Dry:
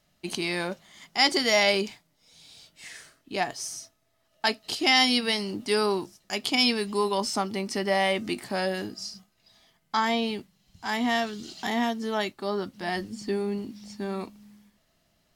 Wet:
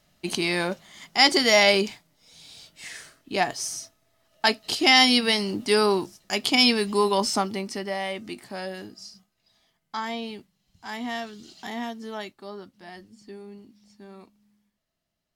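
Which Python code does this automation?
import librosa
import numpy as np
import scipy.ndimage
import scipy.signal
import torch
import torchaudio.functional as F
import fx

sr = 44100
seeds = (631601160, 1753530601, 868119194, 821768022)

y = fx.gain(x, sr, db=fx.line((7.34, 4.0), (7.97, -6.0), (12.1, -6.0), (12.96, -13.5)))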